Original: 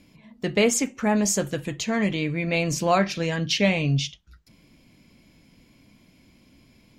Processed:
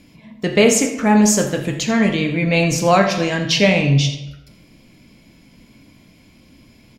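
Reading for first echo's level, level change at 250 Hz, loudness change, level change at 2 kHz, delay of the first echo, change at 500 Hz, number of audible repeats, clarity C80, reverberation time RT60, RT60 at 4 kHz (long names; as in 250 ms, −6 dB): −14.0 dB, +8.0 dB, +7.5 dB, +7.5 dB, 84 ms, +7.5 dB, 1, 9.5 dB, 1.0 s, 0.65 s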